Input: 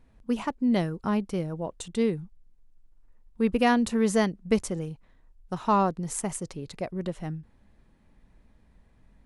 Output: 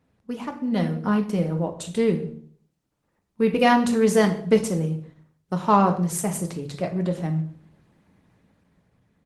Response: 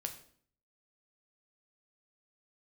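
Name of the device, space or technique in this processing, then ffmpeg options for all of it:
far-field microphone of a smart speaker: -filter_complex "[0:a]asplit=3[link_01][link_02][link_03];[link_01]afade=type=out:start_time=0.71:duration=0.02[link_04];[link_02]aecho=1:1:4.1:0.45,afade=type=in:start_time=0.71:duration=0.02,afade=type=out:start_time=1.57:duration=0.02[link_05];[link_03]afade=type=in:start_time=1.57:duration=0.02[link_06];[link_04][link_05][link_06]amix=inputs=3:normalize=0[link_07];[1:a]atrim=start_sample=2205[link_08];[link_07][link_08]afir=irnorm=-1:irlink=0,highpass=frequency=91:width=0.5412,highpass=frequency=91:width=1.3066,dynaudnorm=framelen=230:gausssize=9:maxgain=7dB" -ar 48000 -c:a libopus -b:a 16k

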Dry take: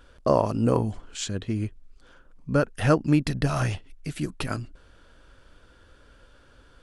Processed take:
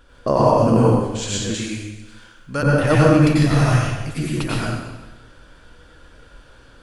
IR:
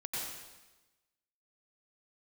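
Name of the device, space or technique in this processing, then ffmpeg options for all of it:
bathroom: -filter_complex "[1:a]atrim=start_sample=2205[link_01];[0:a][link_01]afir=irnorm=-1:irlink=0,asettb=1/sr,asplit=3[link_02][link_03][link_04];[link_02]atrim=end=1.544[link_05];[link_03]atrim=start=1.54:end=2.63,asetpts=PTS-STARTPTS,afade=type=in:duration=0.004:curve=qsin,afade=type=out:start_time=1.086:duration=0.004:curve=qsin,tiltshelf=frequency=1100:gain=-7.5[link_06];[link_04]atrim=start=2.626[link_07];[link_05][link_06]acrossfade=duration=0.004:curve1=hsin:curve2=qsin[link_08];[link_08][link_07]acrossfade=duration=0.004:curve1=qsin:curve2=hsin,volume=6dB"

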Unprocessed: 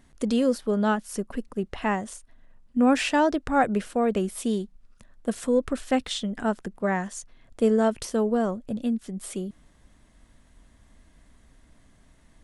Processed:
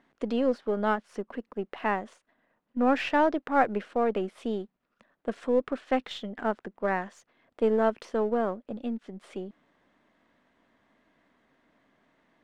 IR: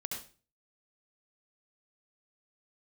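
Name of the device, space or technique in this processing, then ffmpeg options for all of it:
crystal radio: -af "highpass=290,lowpass=2600,aeval=exprs='if(lt(val(0),0),0.708*val(0),val(0))':channel_layout=same"

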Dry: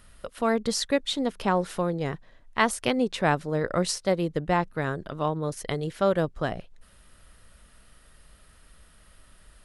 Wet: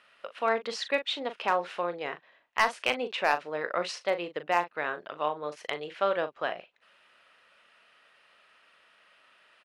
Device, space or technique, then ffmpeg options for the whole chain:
megaphone: -filter_complex "[0:a]highpass=590,lowpass=3300,equalizer=frequency=2600:width_type=o:width=0.48:gain=7,asoftclip=type=hard:threshold=-14.5dB,asplit=2[link_01][link_02];[link_02]adelay=40,volume=-10.5dB[link_03];[link_01][link_03]amix=inputs=2:normalize=0"

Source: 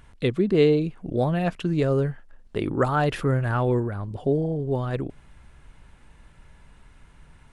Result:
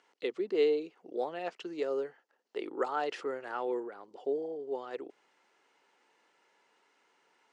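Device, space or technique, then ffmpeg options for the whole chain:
phone speaker on a table: -af "highpass=frequency=400:width=0.5412,highpass=frequency=400:width=1.3066,equalizer=frequency=620:width_type=q:width=4:gain=-8,equalizer=frequency=1100:width_type=q:width=4:gain=-6,equalizer=frequency=1600:width_type=q:width=4:gain=-7,equalizer=frequency=2400:width_type=q:width=4:gain=-5,equalizer=frequency=3600:width_type=q:width=4:gain=-6,lowpass=frequency=6600:width=0.5412,lowpass=frequency=6600:width=1.3066,volume=-4.5dB"

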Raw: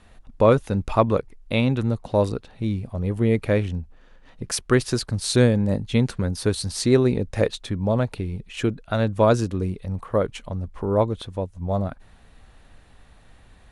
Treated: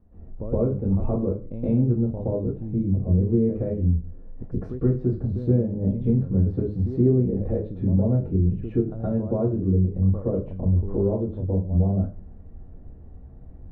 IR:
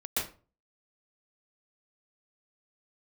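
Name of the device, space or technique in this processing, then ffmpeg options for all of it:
television next door: -filter_complex "[0:a]acompressor=threshold=-28dB:ratio=3,lowpass=380[link_01];[1:a]atrim=start_sample=2205[link_02];[link_01][link_02]afir=irnorm=-1:irlink=0,volume=2dB"

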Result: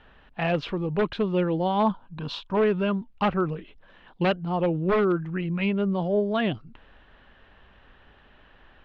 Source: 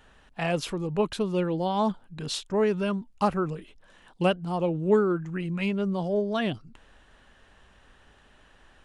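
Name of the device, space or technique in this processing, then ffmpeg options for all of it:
synthesiser wavefolder: -filter_complex "[0:a]aeval=exprs='0.119*(abs(mod(val(0)/0.119+3,4)-2)-1)':channel_layout=same,lowpass=frequency=3600:width=0.5412,lowpass=frequency=3600:width=1.3066,asettb=1/sr,asplit=3[link_01][link_02][link_03];[link_01]atrim=end=1.854[link_04];[link_02]atrim=start=1.85:end=2.57,asetpts=PTS-STARTPTS,afade=type=in:duration=0.004:curve=qsin,afade=type=out:start_time=0.716:duration=0.004:curve=qsin,equalizer=frequency=400:width_type=o:width=0.33:gain=-7,equalizer=frequency=1000:width_type=o:width=0.33:gain=10,equalizer=frequency=2000:width_type=o:width=0.33:gain=-8[link_05];[link_03]atrim=start=2.566[link_06];[link_04][link_05]acrossfade=duration=0.004:curve1=hsin:curve2=qsin[link_07];[link_07][link_06]acrossfade=duration=0.004:curve1=qsin:curve2=hsin,volume=2.5dB"

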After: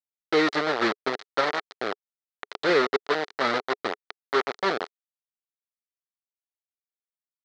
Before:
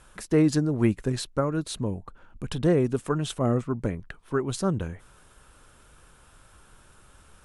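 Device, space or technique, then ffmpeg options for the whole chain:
hand-held game console: -filter_complex "[0:a]asettb=1/sr,asplit=3[link_01][link_02][link_03];[link_01]atrim=end=1.394[link_04];[link_02]atrim=start=1.39:end=2.73,asetpts=PTS-STARTPTS,afade=type=in:duration=0.004:curve=qsin,afade=type=out:start_time=1.336:duration=0.004:curve=qsin,bandreject=frequency=80.91:width_type=h:width=4,bandreject=frequency=161.82:width_type=h:width=4,bandreject=frequency=242.73:width_type=h:width=4,bandreject=frequency=323.64:width_type=h:width=4,bandreject=frequency=404.55:width_type=h:width=4,bandreject=frequency=485.46:width_type=h:width=4,bandreject=frequency=566.37:width_type=h:width=4,bandreject=frequency=647.28:width_type=h:width=4,bandreject=frequency=728.19:width_type=h:width=4,bandreject=frequency=809.1:width_type=h:width=4,bandreject=frequency=890.01:width_type=h:width=4,bandreject=frequency=970.92:width_type=h:width=4,bandreject=frequency=1051.83:width_type=h:width=4,bandreject=frequency=1132.74:width_type=h:width=4,bandreject=frequency=1213.65:width_type=h:width=4,bandreject=frequency=1294.56:width_type=h:width=4,bandreject=frequency=1375.47:width_type=h:width=4,bandreject=frequency=1456.38:width_type=h:width=4,bandreject=frequency=1537.29:width_type=h:width=4,bandreject=frequency=1618.2:width_type=h:width=4,bandreject=frequency=1699.11:width_type=h:width=4,bandreject=frequency=1780.02:width_type=h:width=4,bandreject=frequency=1860.93:width_type=h:width=4,bandreject=frequency=1941.84:width_type=h:width=4,bandreject=frequency=2022.75:width_type=h:width=4,bandreject=frequency=2103.66:width_type=h:width=4,bandreject=frequency=2184.57:width_type=h:width=4,bandreject=frequency=2265.48:width_type=h:width=4,bandreject=frequency=2346.39:width_type=h:width=4,bandreject=frequency=2427.3:width_type=h:width=4,bandreject=frequency=2508.21:width_type=h:width=4[link_05];[link_03]atrim=start=2.726[link_06];[link_04][link_05]acrossfade=duration=0.004:curve1=hsin:curve2=qsin[link_07];[link_07][link_06]acrossfade=duration=0.004:curve1=qsin:curve2=hsin,acrusher=bits=3:mix=0:aa=0.000001,highpass=420,equalizer=frequency=420:width_type=q:width=4:gain=6,equalizer=frequency=740:width_type=q:width=4:gain=3,equalizer=frequency=1300:width_type=q:width=4:gain=6,equalizer=frequency=1900:width_type=q:width=4:gain=6,equalizer=frequency=2700:width_type=q:width=4:gain=-4,equalizer=frequency=4100:width_type=q:width=4:gain=5,lowpass=frequency=4700:width=0.5412,lowpass=frequency=4700:width=1.3066"

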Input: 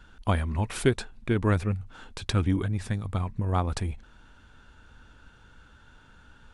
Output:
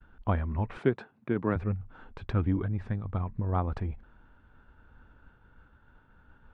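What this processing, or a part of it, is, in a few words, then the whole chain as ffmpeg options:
hearing-loss simulation: -filter_complex "[0:a]lowpass=1600,agate=range=-33dB:threshold=-51dB:ratio=3:detection=peak,asettb=1/sr,asplit=3[link_01][link_02][link_03];[link_01]atrim=end=0.774[link_04];[link_02]atrim=start=0.77:end=1.56,asetpts=PTS-STARTPTS,afade=type=in:duration=0.004:curve=qsin,afade=type=out:start_time=0.786:duration=0.004:curve=qsin,highpass=frequency=130:width=0.5412,highpass=frequency=130:width=1.3066[link_05];[link_03]atrim=start=1.556[link_06];[link_04][link_05]acrossfade=duration=0.004:curve1=hsin:curve2=qsin[link_07];[link_07][link_06]acrossfade=duration=0.004:curve1=qsin:curve2=hsin,volume=-2.5dB"

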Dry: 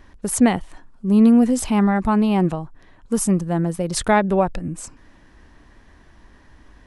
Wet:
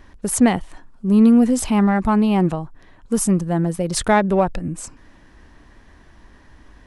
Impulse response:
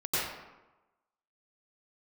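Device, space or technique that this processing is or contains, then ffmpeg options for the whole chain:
parallel distortion: -filter_complex "[0:a]asplit=2[link_01][link_02];[link_02]asoftclip=type=hard:threshold=-18.5dB,volume=-14dB[link_03];[link_01][link_03]amix=inputs=2:normalize=0"

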